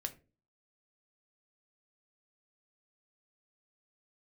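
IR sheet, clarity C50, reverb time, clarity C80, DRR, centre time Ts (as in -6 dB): 16.5 dB, 0.35 s, 22.0 dB, 6.0 dB, 5 ms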